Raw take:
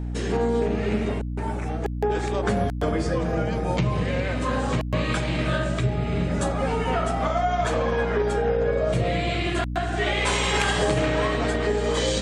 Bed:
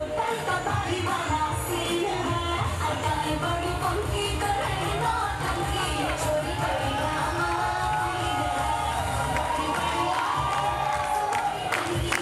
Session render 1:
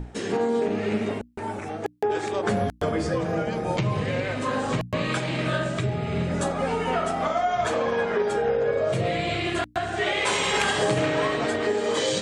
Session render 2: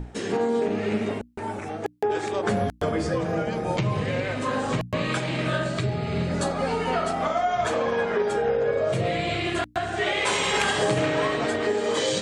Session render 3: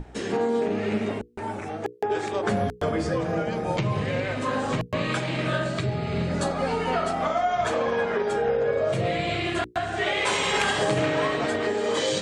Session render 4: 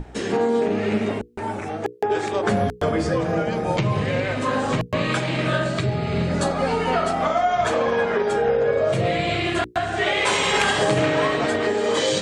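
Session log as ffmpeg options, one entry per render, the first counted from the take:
-af "bandreject=f=60:t=h:w=6,bandreject=f=120:t=h:w=6,bandreject=f=180:t=h:w=6,bandreject=f=240:t=h:w=6,bandreject=f=300:t=h:w=6"
-filter_complex "[0:a]asettb=1/sr,asplit=3[s0][s1][s2];[s0]atrim=end=5.654[s3];[s1]atrim=start=5.65:end=7.13,asetpts=PTS-STARTPTS,afade=t=in:d=0.004:c=qsin,afade=t=out:st=1.476:d=0.004:c=qsin,equalizer=f=4400:w=6.6:g=9.5[s4];[s2]atrim=start=7.126[s5];[s3][s4]acrossfade=d=0.004:c1=hsin:c2=qsin[s6];[s6][s5]acrossfade=d=0.004:c1=qsin:c2=hsin"
-af "highshelf=f=7900:g=-4,bandreject=f=60:t=h:w=6,bandreject=f=120:t=h:w=6,bandreject=f=180:t=h:w=6,bandreject=f=240:t=h:w=6,bandreject=f=300:t=h:w=6,bandreject=f=360:t=h:w=6,bandreject=f=420:t=h:w=6,bandreject=f=480:t=h:w=6"
-af "volume=1.58"

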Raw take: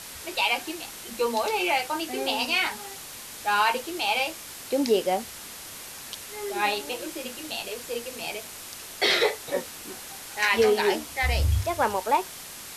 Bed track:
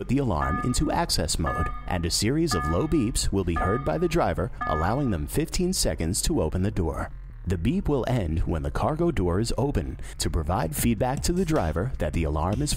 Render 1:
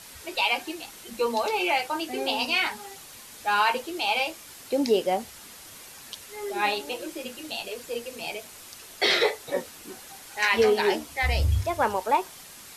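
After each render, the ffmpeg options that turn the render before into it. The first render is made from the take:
-af "afftdn=nr=6:nf=-41"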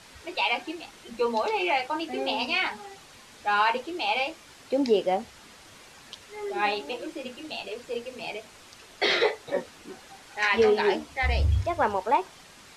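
-af "lowpass=9300,highshelf=f=5800:g=-11"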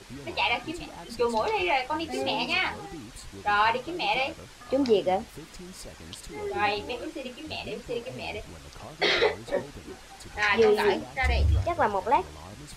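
-filter_complex "[1:a]volume=0.112[s0];[0:a][s0]amix=inputs=2:normalize=0"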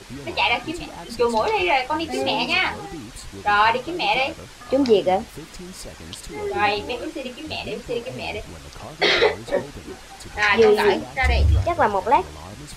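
-af "volume=2"

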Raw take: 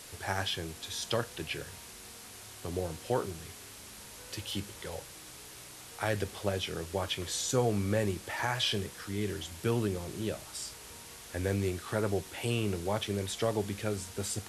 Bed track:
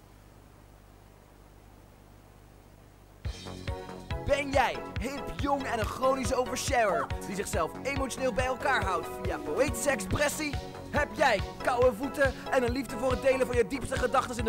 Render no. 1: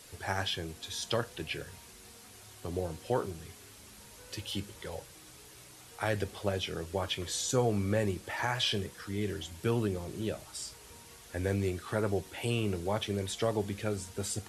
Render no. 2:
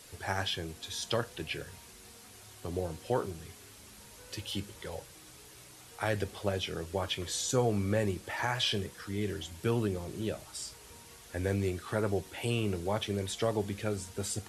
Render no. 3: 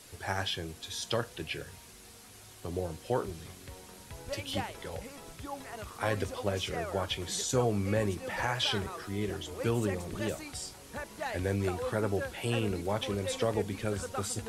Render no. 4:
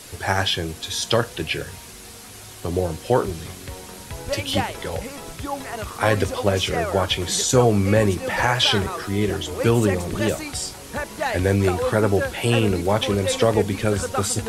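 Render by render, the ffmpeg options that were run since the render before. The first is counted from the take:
-af "afftdn=nr=6:nf=-49"
-af anull
-filter_complex "[1:a]volume=0.237[s0];[0:a][s0]amix=inputs=2:normalize=0"
-af "volume=3.98"

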